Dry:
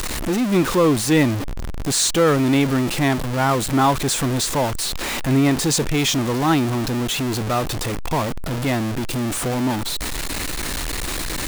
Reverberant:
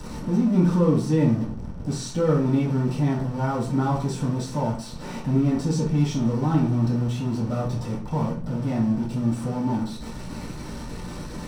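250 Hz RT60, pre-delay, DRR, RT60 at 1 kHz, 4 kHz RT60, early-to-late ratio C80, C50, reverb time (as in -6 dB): 0.75 s, 3 ms, -9.0 dB, 0.40 s, 0.40 s, 11.5 dB, 5.5 dB, 0.45 s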